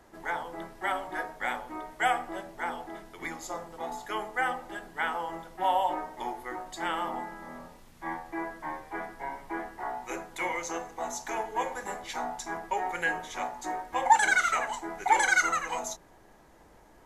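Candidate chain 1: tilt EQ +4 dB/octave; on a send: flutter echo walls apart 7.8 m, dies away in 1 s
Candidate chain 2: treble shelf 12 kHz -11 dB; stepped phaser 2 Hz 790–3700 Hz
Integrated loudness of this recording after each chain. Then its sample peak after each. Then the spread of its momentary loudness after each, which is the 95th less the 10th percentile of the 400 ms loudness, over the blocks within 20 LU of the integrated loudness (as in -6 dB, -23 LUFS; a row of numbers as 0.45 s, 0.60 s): -25.5 LUFS, -34.5 LUFS; -3.0 dBFS, -9.5 dBFS; 16 LU, 16 LU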